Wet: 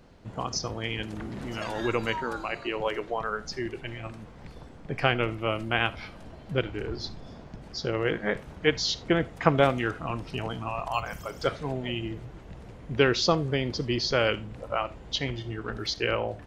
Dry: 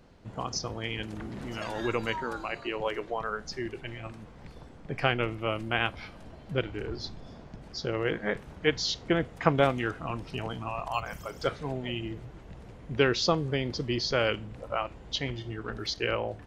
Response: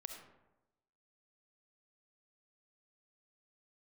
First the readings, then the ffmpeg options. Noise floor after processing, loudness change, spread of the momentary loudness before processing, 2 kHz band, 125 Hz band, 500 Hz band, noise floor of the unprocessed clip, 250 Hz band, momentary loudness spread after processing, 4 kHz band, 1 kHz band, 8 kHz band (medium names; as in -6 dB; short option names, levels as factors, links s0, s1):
-47 dBFS, +2.0 dB, 17 LU, +2.0 dB, +2.0 dB, +2.0 dB, -49 dBFS, +2.0 dB, 17 LU, +2.0 dB, +2.0 dB, +2.0 dB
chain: -filter_complex "[0:a]asplit=2[s0][s1];[1:a]atrim=start_sample=2205,afade=t=out:st=0.14:d=0.01,atrim=end_sample=6615[s2];[s1][s2]afir=irnorm=-1:irlink=0,volume=0.501[s3];[s0][s3]amix=inputs=2:normalize=0"